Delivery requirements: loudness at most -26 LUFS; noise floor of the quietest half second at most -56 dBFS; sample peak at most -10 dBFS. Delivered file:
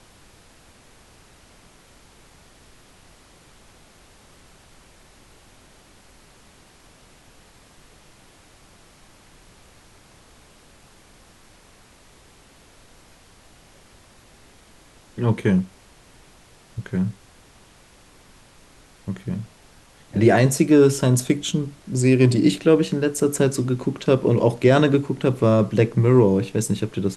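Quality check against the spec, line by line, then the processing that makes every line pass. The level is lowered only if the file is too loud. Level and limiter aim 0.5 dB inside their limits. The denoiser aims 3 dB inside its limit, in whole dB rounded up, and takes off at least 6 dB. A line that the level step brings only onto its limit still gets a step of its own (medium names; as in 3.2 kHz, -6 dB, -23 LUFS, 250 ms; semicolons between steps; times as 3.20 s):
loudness -19.5 LUFS: fail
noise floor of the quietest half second -51 dBFS: fail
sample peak -4.0 dBFS: fail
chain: trim -7 dB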